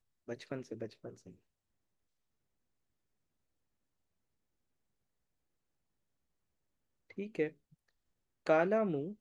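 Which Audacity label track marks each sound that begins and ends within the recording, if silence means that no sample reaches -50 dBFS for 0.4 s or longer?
7.100000	7.510000	sound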